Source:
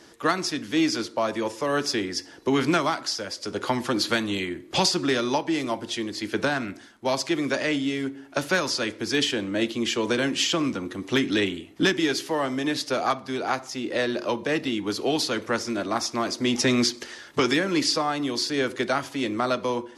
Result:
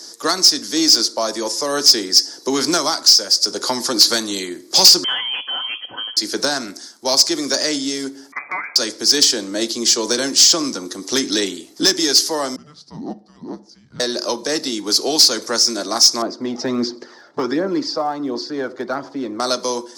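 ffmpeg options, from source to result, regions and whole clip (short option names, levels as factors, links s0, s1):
-filter_complex "[0:a]asettb=1/sr,asplit=3[s0][s1][s2];[s0]atrim=end=5.044[s3];[s1]atrim=start=5.04:end=6.17,asetpts=PTS-STARTPTS,afade=t=in:d=0.004:c=qsin,afade=t=out:st=1.126:d=0.004:c=qsin,aecho=1:1:4.2:0.5,atrim=end_sample=49833,aeval=exprs='clip(val(0),-1,0.0841)':c=same,lowpass=f=2900:t=q:w=0.5098,lowpass=f=2900:t=q:w=0.6013,lowpass=f=2900:t=q:w=0.9,lowpass=f=2900:t=q:w=2.563,afreqshift=-3400[s4];[s2]atrim=start=6.166[s5];[s3][s4]acrossfade=d=0.004:c1=hsin:c2=qsin[s6];[s6][s5]acrossfade=d=0.004:c1=qsin:c2=hsin,asettb=1/sr,asplit=3[s7][s8][s9];[s7]atrim=end=8.324[s10];[s8]atrim=start=8.32:end=8.76,asetpts=PTS-STARTPTS,afade=t=in:d=0.004:c=qsin,afade=t=out:st=0.436:d=0.004:c=qsin,lowpass=f=2200:t=q:w=0.5098,lowpass=f=2200:t=q:w=0.6013,lowpass=f=2200:t=q:w=0.9,lowpass=f=2200:t=q:w=2.563,afreqshift=-2600,aecho=1:1:6.8:0.48,atrim=end_sample=19404,acompressor=threshold=0.0398:ratio=1.5:attack=3.2:release=140:knee=1:detection=peak[s11];[s9]atrim=start=8.756[s12];[s10][s11]acrossfade=d=0.004:c1=hsin:c2=qsin[s13];[s13][s12]acrossfade=d=0.004:c1=qsin:c2=hsin,asettb=1/sr,asplit=3[s14][s15][s16];[s14]atrim=end=12.564[s17];[s15]atrim=start=12.56:end=14,asetpts=PTS-STARTPTS,afade=t=in:d=0.004:c=qsin,afade=t=out:st=1.436:d=0.004:c=qsin,bandpass=f=650:t=q:w=3.9,afreqshift=-450[s18];[s16]atrim=start=13.996[s19];[s17][s18]acrossfade=d=0.004:c1=hsin:c2=qsin[s20];[s20][s19]acrossfade=d=0.004:c1=qsin:c2=hsin,asettb=1/sr,asplit=3[s21][s22][s23];[s21]atrim=end=16.224[s24];[s22]atrim=start=16.22:end=19.4,asetpts=PTS-STARTPTS,afade=t=in:d=0.004:c=qsin,afade=t=out:st=3.176:d=0.004:c=qsin,lowpass=1300,aphaser=in_gain=1:out_gain=1:delay=1.6:decay=0.37:speed=1.4:type=triangular[s25];[s23]atrim=start=19.396[s26];[s24][s25]acrossfade=d=0.004:c1=hsin:c2=qsin[s27];[s27][s26]acrossfade=d=0.004:c1=qsin:c2=hsin,highpass=260,highshelf=f=3700:t=q:w=3:g=11,acontrast=69,volume=0.794"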